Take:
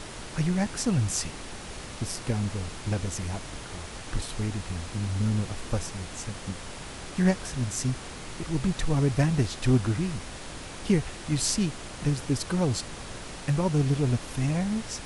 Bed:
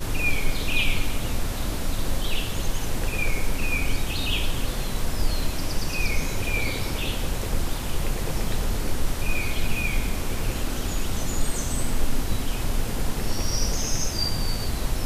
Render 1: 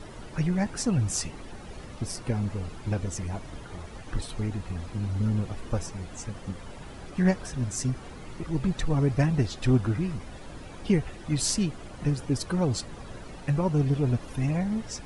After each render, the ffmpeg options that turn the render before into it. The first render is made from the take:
ffmpeg -i in.wav -af "afftdn=noise_reduction=12:noise_floor=-41" out.wav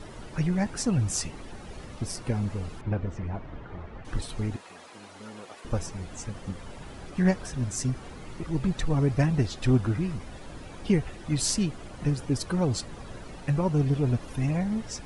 ffmpeg -i in.wav -filter_complex "[0:a]asettb=1/sr,asplit=3[link_01][link_02][link_03];[link_01]atrim=end=2.814[link_04];[link_02]atrim=start=2.81:end=4.05,asetpts=PTS-STARTPTS,afade=type=in:duration=0.004:curve=qsin,afade=type=out:start_time=1.236:duration=0.004:curve=qsin,lowpass=2100[link_05];[link_03]atrim=start=4.046[link_06];[link_04][link_05]acrossfade=duration=0.004:curve1=hsin:curve2=qsin[link_07];[link_07][link_06]acrossfade=duration=0.004:curve1=qsin:curve2=hsin,asettb=1/sr,asplit=3[link_08][link_09][link_10];[link_08]atrim=end=4.564[link_11];[link_09]atrim=start=4.56:end=5.65,asetpts=PTS-STARTPTS,afade=type=in:duration=0.004:curve=qsin,afade=type=out:start_time=1.086:duration=0.004:curve=qsin,highpass=530[link_12];[link_10]atrim=start=5.646[link_13];[link_11][link_12]acrossfade=duration=0.004:curve1=hsin:curve2=qsin[link_14];[link_14][link_13]acrossfade=duration=0.004:curve1=qsin:curve2=hsin" out.wav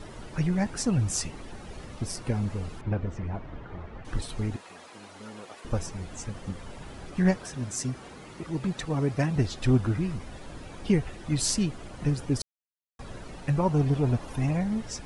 ffmpeg -i in.wav -filter_complex "[0:a]asettb=1/sr,asplit=3[link_01][link_02][link_03];[link_01]atrim=end=7.374[link_04];[link_02]atrim=start=7.37:end=9.36,asetpts=PTS-STARTPTS,afade=type=in:duration=0.004:curve=qsin,afade=type=out:start_time=1.986:duration=0.004:curve=qsin,highpass=frequency=170:poles=1[link_05];[link_03]atrim=start=9.356[link_06];[link_04][link_05]acrossfade=duration=0.004:curve1=hsin:curve2=qsin[link_07];[link_07][link_06]acrossfade=duration=0.004:curve1=qsin:curve2=hsin,asettb=1/sr,asplit=3[link_08][link_09][link_10];[link_08]atrim=end=13.594[link_11];[link_09]atrim=start=13.59:end=14.53,asetpts=PTS-STARTPTS,afade=type=in:duration=0.004:curve=qsin,afade=type=out:start_time=0.936:duration=0.004:curve=qsin,equalizer=frequency=850:width=1.5:gain=5[link_12];[link_10]atrim=start=14.526[link_13];[link_11][link_12]acrossfade=duration=0.004:curve1=hsin:curve2=qsin[link_14];[link_14][link_13]acrossfade=duration=0.004:curve1=qsin:curve2=hsin,asplit=3[link_15][link_16][link_17];[link_15]atrim=end=12.42,asetpts=PTS-STARTPTS,afade=type=out:start_time=12.416:duration=0.004:curve=hsin[link_18];[link_16]atrim=start=12.42:end=12.99,asetpts=PTS-STARTPTS,volume=0[link_19];[link_17]atrim=start=12.99,asetpts=PTS-STARTPTS,afade=type=in:duration=0.004:curve=hsin[link_20];[link_18][link_19][link_20]concat=n=3:v=0:a=1" out.wav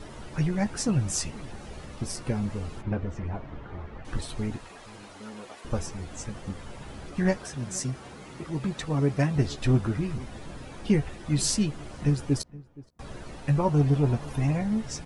ffmpeg -i in.wav -filter_complex "[0:a]asplit=2[link_01][link_02];[link_02]adelay=14,volume=-9dB[link_03];[link_01][link_03]amix=inputs=2:normalize=0,asplit=2[link_04][link_05];[link_05]adelay=471,lowpass=frequency=1200:poles=1,volume=-20dB,asplit=2[link_06][link_07];[link_07]adelay=471,lowpass=frequency=1200:poles=1,volume=0.23[link_08];[link_04][link_06][link_08]amix=inputs=3:normalize=0" out.wav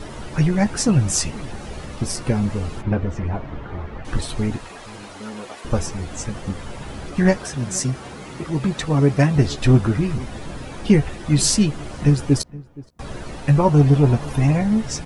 ffmpeg -i in.wav -af "volume=8.5dB,alimiter=limit=-3dB:level=0:latency=1" out.wav

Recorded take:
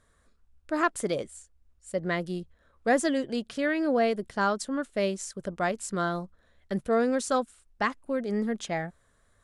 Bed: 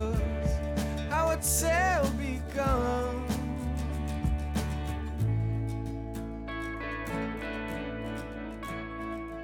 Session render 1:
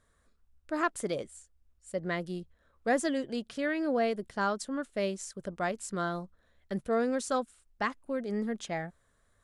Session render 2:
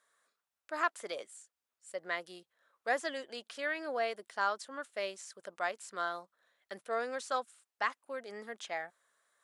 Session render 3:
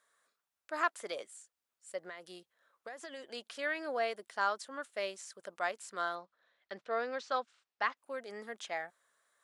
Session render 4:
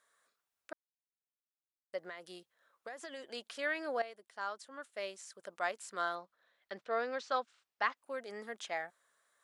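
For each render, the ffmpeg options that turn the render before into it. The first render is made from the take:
ffmpeg -i in.wav -af "volume=-4dB" out.wav
ffmpeg -i in.wav -filter_complex "[0:a]acrossover=split=4400[link_01][link_02];[link_02]acompressor=threshold=-47dB:ratio=4:attack=1:release=60[link_03];[link_01][link_03]amix=inputs=2:normalize=0,highpass=720" out.wav
ffmpeg -i in.wav -filter_complex "[0:a]asettb=1/sr,asplit=3[link_01][link_02][link_03];[link_01]atrim=end=2.004[link_04];[link_02]atrim=start=2:end=3.24,asetpts=PTS-STARTPTS,afade=type=in:duration=0.004:curve=qsin,afade=type=out:start_time=1.236:duration=0.004:curve=qsin,acompressor=threshold=-41dB:ratio=16:attack=3.2:release=140:knee=1:detection=peak[link_05];[link_03]atrim=start=3.236[link_06];[link_04][link_05]acrossfade=duration=0.004:curve1=hsin:curve2=qsin[link_07];[link_07][link_06]acrossfade=duration=0.004:curve1=qsin:curve2=hsin,asettb=1/sr,asplit=3[link_08][link_09][link_10];[link_08]atrim=end=6.154[link_11];[link_09]atrim=start=6.15:end=7.97,asetpts=PTS-STARTPTS,afade=type=in:duration=0.004:curve=qsin,afade=type=out:start_time=1.816:duration=0.004:curve=qsin,lowpass=frequency=5300:width=0.5412,lowpass=frequency=5300:width=1.3066[link_12];[link_10]atrim=start=7.966[link_13];[link_11][link_12]acrossfade=duration=0.004:curve1=hsin:curve2=qsin[link_14];[link_14][link_13]acrossfade=duration=0.004:curve1=qsin:curve2=hsin" out.wav
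ffmpeg -i in.wav -filter_complex "[0:a]asplit=4[link_01][link_02][link_03][link_04];[link_01]atrim=end=0.73,asetpts=PTS-STARTPTS,afade=type=out:start_time=0.726:duration=0.004:curve=hsin[link_05];[link_02]atrim=start=0.73:end=1.93,asetpts=PTS-STARTPTS,volume=0[link_06];[link_03]atrim=start=1.93:end=4.02,asetpts=PTS-STARTPTS,afade=type=in:duration=0.004:curve=hsin,afade=type=out:start_time=2.086:duration=0.004:curve=hsin:silence=0.211349[link_07];[link_04]atrim=start=4.02,asetpts=PTS-STARTPTS,afade=type=in:duration=1.82:silence=0.211349[link_08];[link_05][link_06][link_07][link_08]concat=n=4:v=0:a=1" out.wav

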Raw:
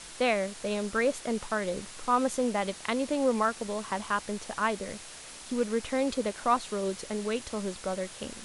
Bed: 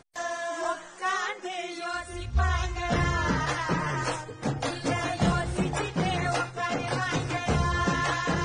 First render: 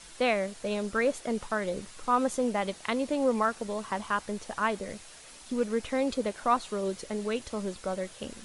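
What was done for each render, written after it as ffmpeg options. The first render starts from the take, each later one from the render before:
ffmpeg -i in.wav -af "afftdn=noise_reduction=6:noise_floor=-46" out.wav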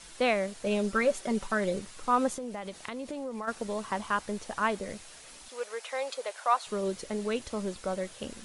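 ffmpeg -i in.wav -filter_complex "[0:a]asettb=1/sr,asplit=3[link_01][link_02][link_03];[link_01]atrim=end=0.664[link_04];[link_02]atrim=start=0.66:end=1.79,asetpts=PTS-STARTPTS,afade=type=in:duration=0.004:curve=qsin,afade=type=out:start_time=1.126:duration=0.004:curve=qsin,aecho=1:1:5.2:0.58,atrim=end_sample=49833[link_05];[link_03]atrim=start=1.786[link_06];[link_04][link_05]acrossfade=duration=0.004:curve1=hsin:curve2=qsin[link_07];[link_07][link_06]acrossfade=duration=0.004:curve1=qsin:curve2=hsin,asplit=3[link_08][link_09][link_10];[link_08]afade=type=out:start_time=2.33:duration=0.02[link_11];[link_09]acompressor=threshold=-35dB:ratio=4:attack=3.2:release=140:knee=1:detection=peak,afade=type=in:start_time=2.33:duration=0.02,afade=type=out:start_time=3.47:duration=0.02[link_12];[link_10]afade=type=in:start_time=3.47:duration=0.02[link_13];[link_11][link_12][link_13]amix=inputs=3:normalize=0,asettb=1/sr,asplit=3[link_14][link_15][link_16];[link_14]atrim=end=5.484[link_17];[link_15]atrim=start=5.48:end=6.67,asetpts=PTS-STARTPTS,afade=type=in:duration=0.004:curve=qsin,afade=type=out:start_time=1.186:duration=0.004:curve=qsin,highpass=frequency=560:width=0.5412,highpass=frequency=560:width=1.3066[link_18];[link_16]atrim=start=6.666[link_19];[link_17][link_18]acrossfade=duration=0.004:curve1=hsin:curve2=qsin[link_20];[link_20][link_19]acrossfade=duration=0.004:curve1=qsin:curve2=hsin" out.wav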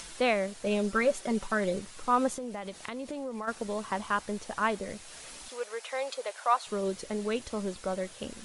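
ffmpeg -i in.wav -af "acompressor=mode=upward:threshold=-39dB:ratio=2.5" out.wav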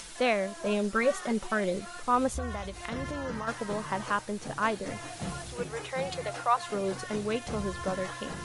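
ffmpeg -i in.wav -i bed.wav -filter_complex "[1:a]volume=-12.5dB[link_01];[0:a][link_01]amix=inputs=2:normalize=0" out.wav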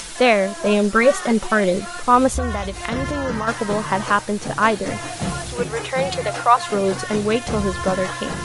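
ffmpeg -i in.wav -af "volume=11.5dB" out.wav

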